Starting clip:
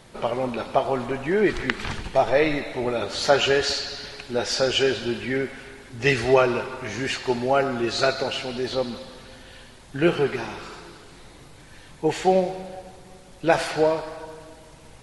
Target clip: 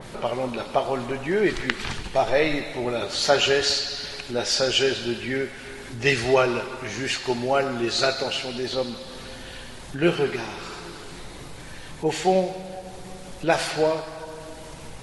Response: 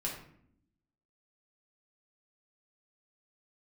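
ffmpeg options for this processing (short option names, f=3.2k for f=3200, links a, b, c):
-filter_complex "[0:a]acompressor=mode=upward:threshold=-28dB:ratio=2.5,asplit=2[a][b];[1:a]atrim=start_sample=2205[c];[b][c]afir=irnorm=-1:irlink=0,volume=-15.5dB[d];[a][d]amix=inputs=2:normalize=0,adynamicequalizer=threshold=0.0178:dfrequency=2500:dqfactor=0.7:tfrequency=2500:tqfactor=0.7:attack=5:release=100:ratio=0.375:range=2.5:mode=boostabove:tftype=highshelf,volume=-2.5dB"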